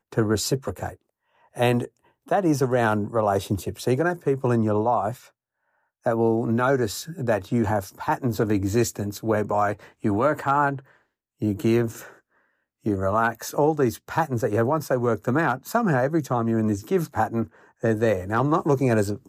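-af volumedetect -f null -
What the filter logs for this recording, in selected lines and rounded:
mean_volume: -23.9 dB
max_volume: -9.1 dB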